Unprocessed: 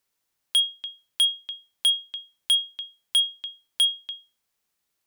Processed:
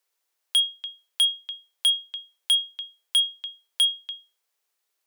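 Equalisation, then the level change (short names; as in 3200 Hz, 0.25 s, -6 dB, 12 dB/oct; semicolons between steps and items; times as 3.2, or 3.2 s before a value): steep high-pass 360 Hz 36 dB/oct; 0.0 dB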